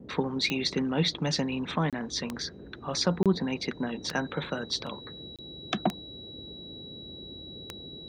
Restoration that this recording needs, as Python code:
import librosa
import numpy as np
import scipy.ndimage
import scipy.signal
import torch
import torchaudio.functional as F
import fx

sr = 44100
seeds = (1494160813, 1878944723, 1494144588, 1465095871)

y = fx.fix_declick_ar(x, sr, threshold=10.0)
y = fx.notch(y, sr, hz=3900.0, q=30.0)
y = fx.fix_interpolate(y, sr, at_s=(1.9, 3.23, 5.36), length_ms=27.0)
y = fx.noise_reduce(y, sr, print_start_s=6.0, print_end_s=6.5, reduce_db=30.0)